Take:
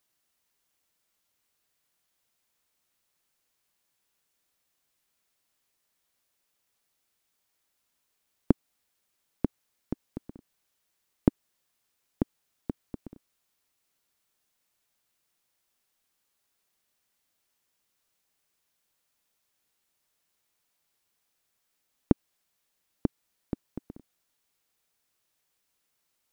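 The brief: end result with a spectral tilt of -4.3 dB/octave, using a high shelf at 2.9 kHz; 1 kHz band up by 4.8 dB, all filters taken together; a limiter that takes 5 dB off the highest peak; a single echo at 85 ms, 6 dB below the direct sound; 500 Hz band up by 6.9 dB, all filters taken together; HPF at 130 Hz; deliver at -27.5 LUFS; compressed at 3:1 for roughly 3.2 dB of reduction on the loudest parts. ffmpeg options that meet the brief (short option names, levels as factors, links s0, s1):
-af "highpass=130,equalizer=f=500:t=o:g=9,equalizer=f=1000:t=o:g=3.5,highshelf=f=2900:g=-9,acompressor=threshold=0.126:ratio=3,alimiter=limit=0.316:level=0:latency=1,aecho=1:1:85:0.501,volume=2.99"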